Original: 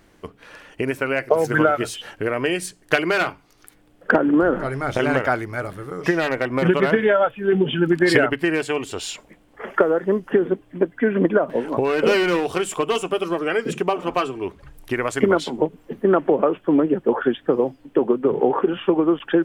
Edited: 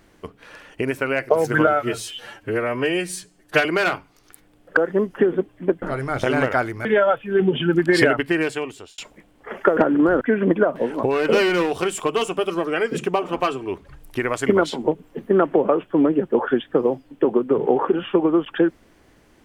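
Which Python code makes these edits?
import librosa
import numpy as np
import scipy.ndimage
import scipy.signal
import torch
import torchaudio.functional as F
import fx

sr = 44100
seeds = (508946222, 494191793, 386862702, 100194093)

y = fx.edit(x, sr, fx.stretch_span(start_s=1.67, length_s=1.32, factor=1.5),
    fx.swap(start_s=4.11, length_s=0.44, other_s=9.9, other_length_s=1.05),
    fx.cut(start_s=5.58, length_s=1.4),
    fx.fade_out_span(start_s=8.56, length_s=0.55), tone=tone)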